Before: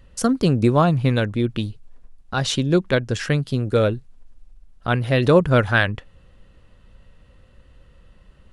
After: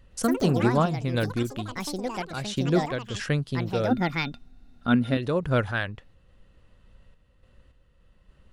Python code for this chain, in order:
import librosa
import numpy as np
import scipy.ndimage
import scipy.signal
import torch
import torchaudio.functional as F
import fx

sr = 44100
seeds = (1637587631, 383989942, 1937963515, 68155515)

y = fx.echo_pitch(x, sr, ms=112, semitones=6, count=3, db_per_echo=-6.0)
y = fx.small_body(y, sr, hz=(240.0, 1400.0, 3600.0), ring_ms=90, db=17, at=(3.9, 5.17))
y = fx.tremolo_random(y, sr, seeds[0], hz=3.5, depth_pct=55)
y = y * librosa.db_to_amplitude(-5.0)